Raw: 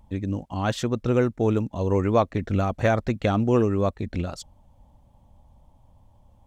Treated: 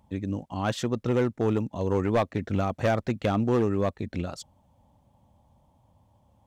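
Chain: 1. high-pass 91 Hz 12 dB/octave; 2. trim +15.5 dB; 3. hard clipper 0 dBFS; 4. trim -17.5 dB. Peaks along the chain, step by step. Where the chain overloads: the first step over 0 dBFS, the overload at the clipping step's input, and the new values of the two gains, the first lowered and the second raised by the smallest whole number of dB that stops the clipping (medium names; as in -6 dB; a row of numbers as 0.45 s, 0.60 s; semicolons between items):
-6.5 dBFS, +9.0 dBFS, 0.0 dBFS, -17.5 dBFS; step 2, 9.0 dB; step 2 +6.5 dB, step 4 -8.5 dB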